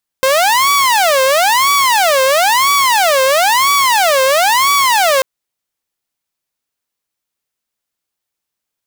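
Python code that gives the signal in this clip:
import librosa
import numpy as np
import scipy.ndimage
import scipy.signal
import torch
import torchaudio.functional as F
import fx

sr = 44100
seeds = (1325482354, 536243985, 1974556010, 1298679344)

y = fx.siren(sr, length_s=4.99, kind='wail', low_hz=524.0, high_hz=1140.0, per_s=1.0, wave='saw', level_db=-6.5)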